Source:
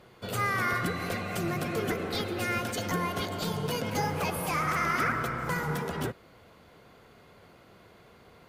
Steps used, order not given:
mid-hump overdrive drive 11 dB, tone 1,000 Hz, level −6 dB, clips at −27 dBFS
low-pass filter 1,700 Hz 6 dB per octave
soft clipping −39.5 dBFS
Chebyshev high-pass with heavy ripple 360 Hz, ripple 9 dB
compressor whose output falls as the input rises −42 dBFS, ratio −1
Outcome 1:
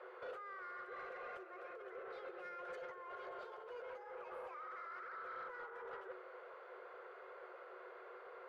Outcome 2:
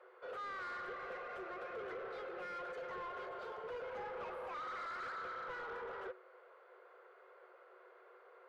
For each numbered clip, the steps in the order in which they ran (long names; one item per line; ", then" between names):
mid-hump overdrive, then compressor whose output falls as the input rises, then Chebyshev high-pass with heavy ripple, then soft clipping, then low-pass filter
mid-hump overdrive, then Chebyshev high-pass with heavy ripple, then soft clipping, then low-pass filter, then compressor whose output falls as the input rises